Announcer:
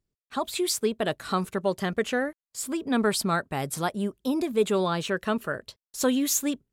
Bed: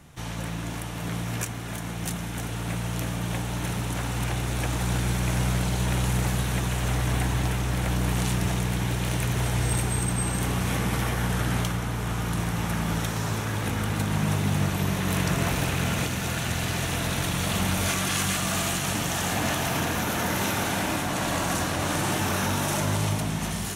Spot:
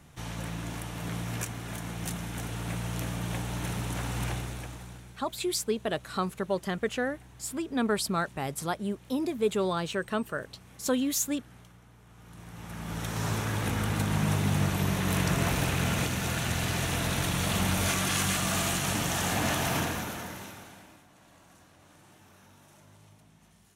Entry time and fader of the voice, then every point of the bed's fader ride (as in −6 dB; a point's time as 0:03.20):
4.85 s, −3.5 dB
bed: 0:04.30 −4 dB
0:05.22 −27 dB
0:12.08 −27 dB
0:13.25 −2 dB
0:19.78 −2 dB
0:21.09 −31 dB